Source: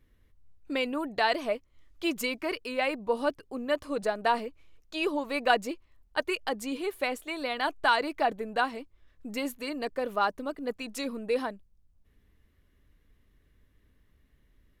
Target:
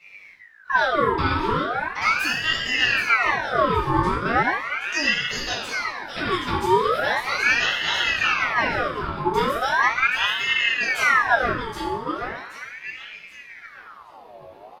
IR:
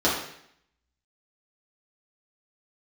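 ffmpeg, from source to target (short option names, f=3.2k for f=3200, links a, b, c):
-filter_complex "[0:a]asettb=1/sr,asplit=3[a][b][c];[a]atrim=end=5.084[d];[b]atrim=start=5.08:end=6.18,asetpts=PTS-STARTPTS,afade=t=in:d=0.004:c=qsin,afade=t=out:st=1.096:d=0.004:c=qsin,highpass=1.5k[e];[c]atrim=start=6.176[f];[d][e]acrossfade=d=0.004:c1=hsin:c2=qsin[g];[g][f]acrossfade=d=0.004:c1=qsin:c2=hsin,alimiter=limit=-22.5dB:level=0:latency=1:release=211,acompressor=threshold=-48dB:ratio=2,aecho=1:1:774|1548|2322|3096:0.473|0.161|0.0547|0.0186,asettb=1/sr,asplit=3[h][i][j];[h]atrim=end=2.044[k];[i]atrim=start=2.04:end=2.74,asetpts=PTS-STARTPTS,afade=t=in:d=0.004:c=qsin,afade=t=out:st=0.696:d=0.004:c=qsin,afreqshift=120[l];[j]atrim=start=2.736[m];[k][l]acrossfade=d=0.004:c1=hsin:c2=qsin[n];[n][m]acrossfade=d=0.004:c1=qsin:c2=hsin,flanger=delay=17.5:depth=3.9:speed=0.14[o];[1:a]atrim=start_sample=2205,asetrate=35280,aresample=44100[p];[o][p]afir=irnorm=-1:irlink=0,aeval=exprs='val(0)*sin(2*PI*1500*n/s+1500*0.6/0.38*sin(2*PI*0.38*n/s))':c=same,volume=7dB"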